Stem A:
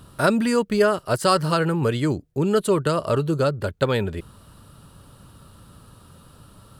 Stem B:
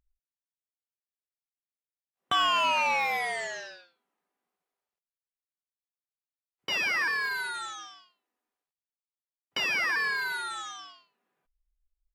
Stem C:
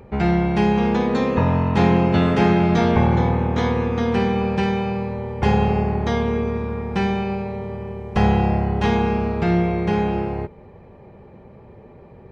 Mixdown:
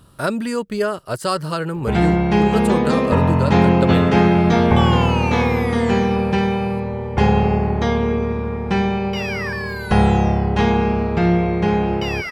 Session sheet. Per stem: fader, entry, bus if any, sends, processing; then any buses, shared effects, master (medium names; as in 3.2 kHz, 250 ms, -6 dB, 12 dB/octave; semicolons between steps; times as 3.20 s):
-2.5 dB, 0.00 s, no send, none
0.0 dB, 2.45 s, no send, none
+2.5 dB, 1.75 s, no send, none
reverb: none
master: none